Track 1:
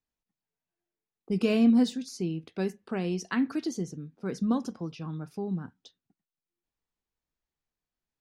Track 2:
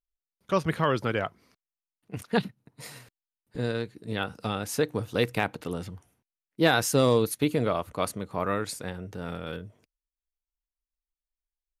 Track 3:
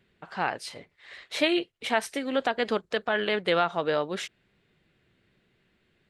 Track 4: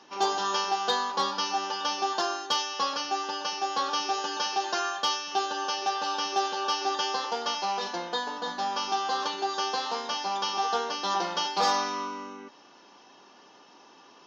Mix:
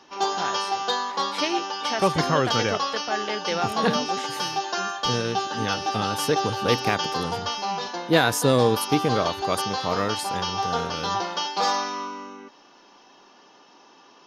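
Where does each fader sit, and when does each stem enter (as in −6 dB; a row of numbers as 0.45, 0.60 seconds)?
−11.0, +2.5, −3.5, +1.5 decibels; 2.20, 1.50, 0.00, 0.00 seconds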